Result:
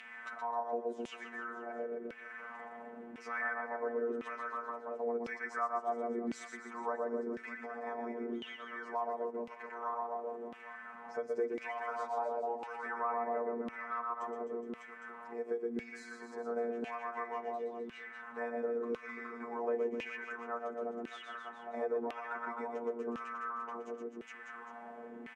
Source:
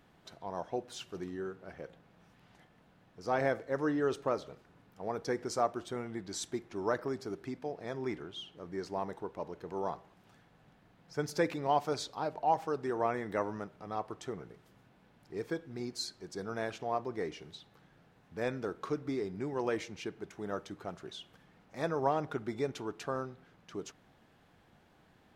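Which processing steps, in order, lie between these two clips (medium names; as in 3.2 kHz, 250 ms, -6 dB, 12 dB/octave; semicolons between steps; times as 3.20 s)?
band-stop 870 Hz, Q 12; reverse bouncing-ball echo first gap 120 ms, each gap 1.15×, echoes 5; compression 2:1, threshold -56 dBFS, peak gain reduction 17 dB; graphic EQ 125/250/1000/2000/4000/8000 Hz -5/+8/+4/+9/-11/+9 dB; robot voice 118 Hz; comb 4.5 ms, depth 89%; LFO band-pass saw down 0.95 Hz 310–2800 Hz; three bands compressed up and down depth 40%; trim +13 dB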